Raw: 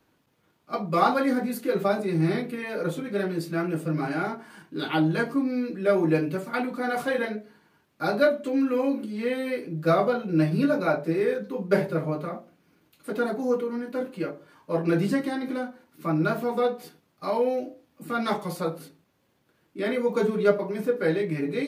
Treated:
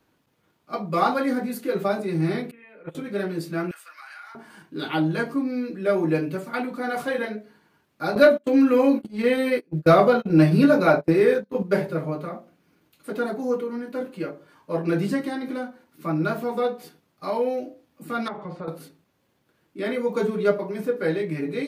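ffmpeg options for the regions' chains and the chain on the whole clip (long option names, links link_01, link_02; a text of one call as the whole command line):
ffmpeg -i in.wav -filter_complex "[0:a]asettb=1/sr,asplit=3[link_01][link_02][link_03];[link_01]atrim=end=2.514[link_04];[link_02]atrim=start=2.51:end=2.95,asetpts=PTS-STARTPTS,afade=type=in:duration=0.004:curve=qsin,afade=type=out:start_time=0.436:duration=0.004:curve=qsin,agate=range=-19dB:threshold=-25dB:ratio=16:release=100:detection=peak,highshelf=frequency=3600:width_type=q:width=3:gain=-11.5[link_05];[link_03]atrim=start=2.946[link_06];[link_04][link_05]acrossfade=duration=0.004:curve1=hsin:curve2=qsin[link_07];[link_07][link_06]acrossfade=duration=0.004:curve1=qsin:curve2=hsin,asettb=1/sr,asplit=3[link_08][link_09][link_10];[link_08]atrim=end=3.714[link_11];[link_09]atrim=start=3.71:end=4.35,asetpts=PTS-STARTPTS,afade=type=in:duration=0.004:curve=qsin,afade=type=out:start_time=0.636:duration=0.004:curve=qsin,highpass=frequency=1200:width=0.5412,highpass=frequency=1200:width=1.3066,acompressor=threshold=-39dB:ratio=6:attack=3.2:release=140:knee=1:detection=peak[link_12];[link_10]atrim=start=4.346[link_13];[link_11][link_12]acrossfade=duration=0.004:curve1=hsin:curve2=qsin[link_14];[link_14][link_13]acrossfade=duration=0.004:curve1=qsin:curve2=hsin,asettb=1/sr,asplit=3[link_15][link_16][link_17];[link_15]atrim=end=8.154[link_18];[link_16]atrim=start=8.15:end=11.63,asetpts=PTS-STARTPTS,afade=type=in:duration=0.004:curve=qsin,afade=type=out:start_time=3.476:duration=0.004:curve=qsin,agate=range=-31dB:threshold=-32dB:ratio=16:release=100:detection=peak,acontrast=73[link_19];[link_17]atrim=start=11.626[link_20];[link_18][link_19]acrossfade=duration=0.004:curve1=hsin:curve2=qsin[link_21];[link_21][link_20]acrossfade=duration=0.004:curve1=qsin:curve2=hsin,asettb=1/sr,asplit=3[link_22][link_23][link_24];[link_22]atrim=end=18.284[link_25];[link_23]atrim=start=18.28:end=18.68,asetpts=PTS-STARTPTS,afade=type=in:duration=0.004:curve=qsin,afade=type=out:start_time=0.396:duration=0.004:curve=qsin,lowpass=2000,acompressor=threshold=-30dB:ratio=5:attack=3.2:release=140:knee=1:detection=peak[link_26];[link_24]atrim=start=18.676[link_27];[link_25][link_26]acrossfade=duration=0.004:curve1=hsin:curve2=qsin[link_28];[link_28][link_27]acrossfade=duration=0.004:curve1=qsin:curve2=hsin" out.wav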